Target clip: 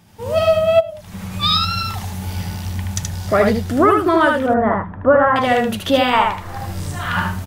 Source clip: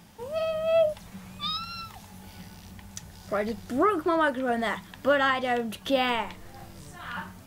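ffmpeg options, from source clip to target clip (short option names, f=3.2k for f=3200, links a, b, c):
-filter_complex "[0:a]asettb=1/sr,asplit=3[a][b][c];[a]atrim=end=4.464[d];[b]atrim=start=4.46:end=5.36,asetpts=PTS-STARTPTS,afade=t=in:d=0.004:c=qsin,afade=t=out:st=0.896:d=0.004:c=qsin,lowpass=f=1.4k:w=0.5412,lowpass=f=1.4k:w=1.3066[e];[c]atrim=start=5.356[f];[d][e]acrossfade=d=0.004:c1=hsin:c2=qsin[g];[g][f]acrossfade=d=0.004:c1=qsin:c2=hsin,asettb=1/sr,asplit=3[h][i][j];[h]atrim=end=6.134[k];[i]atrim=start=6.13:end=6.58,asetpts=PTS-STARTPTS,afade=t=in:d=0.004:c=qsin,afade=t=out:st=0.446:d=0.004:c=qsin,equalizer=f=1.1k:t=o:w=1.4:g=12[l];[j]atrim=start=6.576[m];[k][l]acrossfade=d=0.004:c1=hsin:c2=qsin[n];[n][m]acrossfade=d=0.004:c1=qsin:c2=hsin,aecho=1:1:76:0.668,dynaudnorm=f=160:g=3:m=15dB,equalizer=f=98:t=o:w=0.41:g=12.5,asplit=3[o][p][q];[o]afade=t=out:st=0.79:d=0.02[r];[p]acompressor=threshold=-23dB:ratio=12,afade=t=in:st=0.79:d=0.02,afade=t=out:st=1.31:d=0.02[s];[q]afade=t=in:st=1.31:d=0.02[t];[r][s][t]amix=inputs=3:normalize=0,volume=-1dB"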